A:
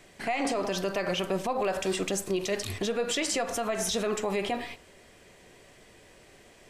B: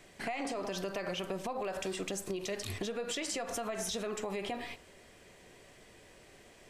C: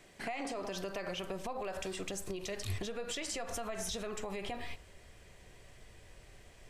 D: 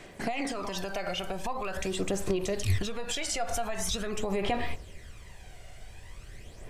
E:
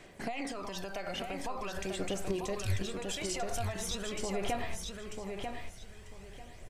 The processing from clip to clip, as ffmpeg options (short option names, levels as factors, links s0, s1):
-af "acompressor=threshold=0.0282:ratio=6,volume=0.75"
-af "asubboost=boost=5:cutoff=110,volume=0.794"
-af "aphaser=in_gain=1:out_gain=1:delay=1.4:decay=0.53:speed=0.44:type=sinusoidal,volume=1.88"
-af "aecho=1:1:943|1886|2829:0.562|0.124|0.0272,volume=0.531"